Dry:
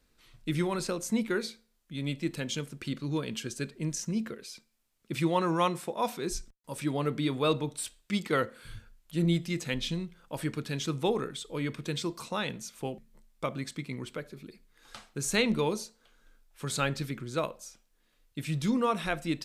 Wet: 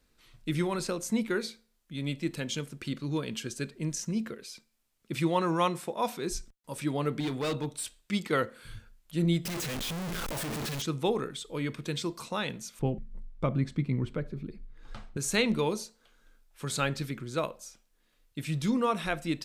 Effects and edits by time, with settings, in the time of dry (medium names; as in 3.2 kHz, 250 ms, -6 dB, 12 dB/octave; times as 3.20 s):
7.20–7.82 s: hard clipper -28 dBFS
9.45–10.82 s: one-bit comparator
12.79–15.17 s: RIAA curve playback